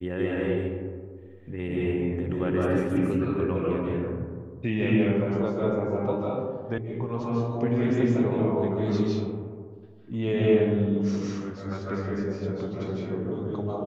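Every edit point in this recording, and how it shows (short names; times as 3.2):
6.78 sound cut off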